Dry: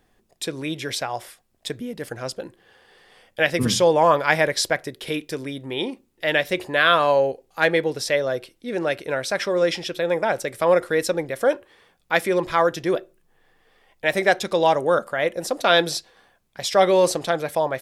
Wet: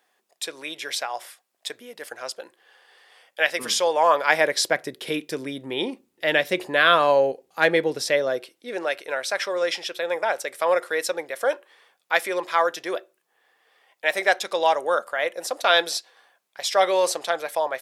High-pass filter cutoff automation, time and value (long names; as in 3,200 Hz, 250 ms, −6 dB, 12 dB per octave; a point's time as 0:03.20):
0:03.97 650 Hz
0:04.82 180 Hz
0:08.12 180 Hz
0:08.92 590 Hz